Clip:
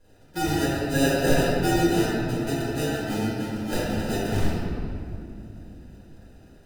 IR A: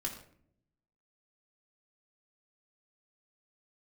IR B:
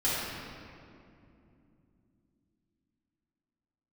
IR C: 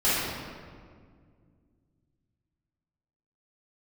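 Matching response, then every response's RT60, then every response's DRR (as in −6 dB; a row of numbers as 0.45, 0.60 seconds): B; non-exponential decay, 2.7 s, 2.0 s; −1.5, −10.5, −13.5 decibels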